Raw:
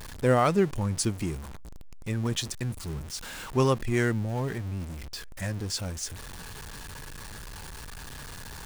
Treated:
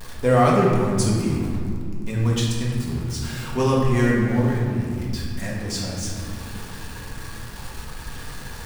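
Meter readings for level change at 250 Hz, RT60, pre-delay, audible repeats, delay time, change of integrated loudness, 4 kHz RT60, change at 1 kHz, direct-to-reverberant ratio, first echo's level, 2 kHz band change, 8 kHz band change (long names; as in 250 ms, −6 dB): +8.5 dB, 2.4 s, 4 ms, no echo audible, no echo audible, +6.5 dB, 1.2 s, +6.5 dB, −4.5 dB, no echo audible, +5.5 dB, +3.0 dB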